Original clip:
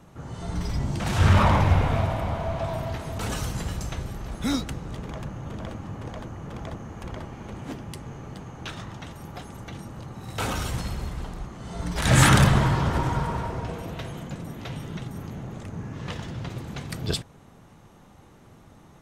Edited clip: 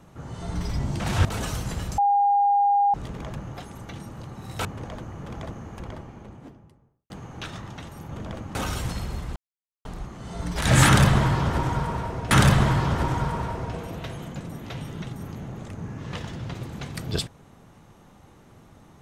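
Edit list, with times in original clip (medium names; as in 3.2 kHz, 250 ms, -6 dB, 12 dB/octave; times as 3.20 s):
1.25–3.14 s: delete
3.87–4.83 s: bleep 809 Hz -16.5 dBFS
5.43–5.89 s: swap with 9.33–10.44 s
6.77–8.34 s: studio fade out
11.25 s: insert silence 0.49 s
12.26–13.71 s: loop, 2 plays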